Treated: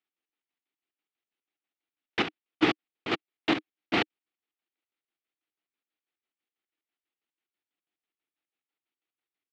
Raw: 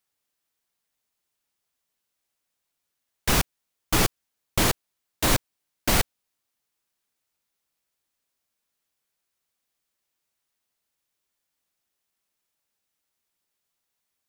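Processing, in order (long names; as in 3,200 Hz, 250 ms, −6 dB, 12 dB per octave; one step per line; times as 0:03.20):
leveller curve on the samples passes 1
tempo change 1.5×
square-wave tremolo 6.1 Hz, depth 65%, duty 55%
loudspeaker in its box 290–3,300 Hz, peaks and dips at 310 Hz +8 dB, 570 Hz −9 dB, 1,000 Hz −8 dB, 1,600 Hz −4 dB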